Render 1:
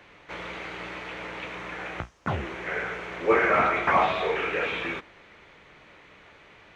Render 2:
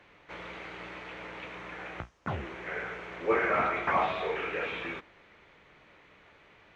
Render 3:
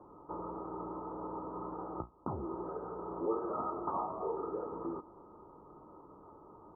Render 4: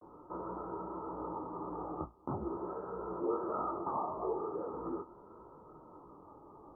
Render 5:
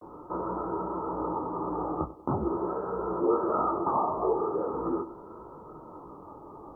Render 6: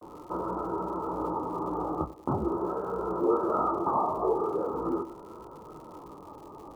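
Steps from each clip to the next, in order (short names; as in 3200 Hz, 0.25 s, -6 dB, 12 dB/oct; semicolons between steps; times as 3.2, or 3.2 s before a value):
high shelf 6100 Hz -6 dB; gain -5.5 dB
compressor 3:1, threshold -42 dBFS, peak gain reduction 15 dB; rippled Chebyshev low-pass 1300 Hz, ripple 9 dB; gain +10.5 dB
vibrato 0.42 Hz 53 cents; detuned doubles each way 57 cents; gain +4 dB
narrowing echo 95 ms, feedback 49%, band-pass 430 Hz, level -14 dB; gain +9 dB
crackle 180/s -46 dBFS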